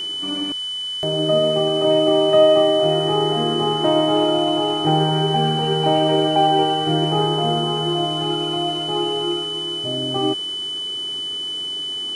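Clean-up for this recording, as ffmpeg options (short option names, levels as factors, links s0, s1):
-af "bandreject=f=3000:w=30,afwtdn=0.0071"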